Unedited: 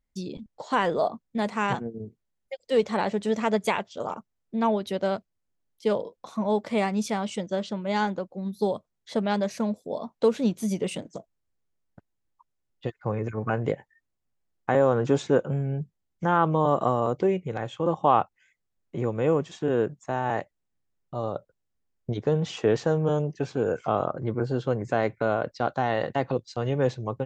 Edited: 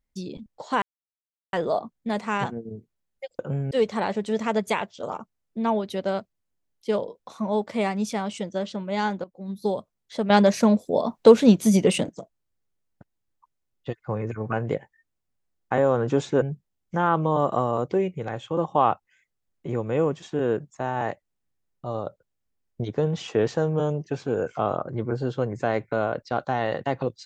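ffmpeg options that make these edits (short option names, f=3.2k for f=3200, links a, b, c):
-filter_complex "[0:a]asplit=8[a][b][c][d][e][f][g][h];[a]atrim=end=0.82,asetpts=PTS-STARTPTS,afade=t=out:st=0.816:d=0.004:c=hsin,apad=pad_dur=0.71[i];[b]atrim=start=0.82:end=2.682,asetpts=PTS-STARTPTS,afade=t=in:d=0.004:c=hsin[j];[c]atrim=start=15.388:end=15.712[k];[d]atrim=start=2.678:end=8.21,asetpts=PTS-STARTPTS,afade=t=out:st=5.528:d=0.004:c=hsin:silence=0.188365[l];[e]atrim=start=8.21:end=9.272,asetpts=PTS-STARTPTS,afade=t=in:d=0.31:silence=0.188365[m];[f]atrim=start=9.268:end=11.062,asetpts=PTS-STARTPTS,volume=9dB[n];[g]atrim=start=11.058:end=15.392[o];[h]atrim=start=15.708[p];[i][j]concat=n=2:v=0:a=1[q];[q][k]acrossfade=d=0.004:c1=hsin:c2=hsin[r];[l][m]concat=n=2:v=0:a=1[s];[r][s]acrossfade=d=0.004:c1=hsin:c2=hsin[t];[t][n]acrossfade=d=0.004:c1=hsin:c2=hsin[u];[u][o]acrossfade=d=0.004:c1=hsin:c2=hsin[v];[v][p]acrossfade=d=0.004:c1=hsin:c2=hsin"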